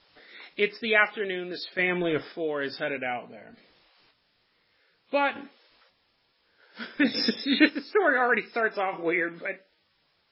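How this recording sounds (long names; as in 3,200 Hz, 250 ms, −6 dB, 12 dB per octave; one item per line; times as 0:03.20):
a quantiser's noise floor 10 bits, dither triangular
chopped level 0.56 Hz, depth 60%, duty 30%
MP3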